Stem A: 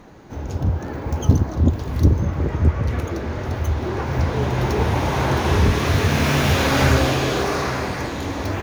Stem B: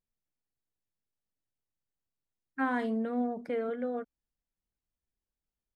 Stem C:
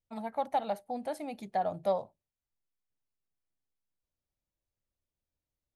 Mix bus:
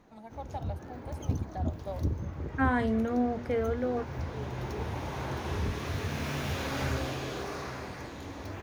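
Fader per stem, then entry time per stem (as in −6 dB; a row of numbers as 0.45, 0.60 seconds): −15.5, +3.0, −10.0 decibels; 0.00, 0.00, 0.00 seconds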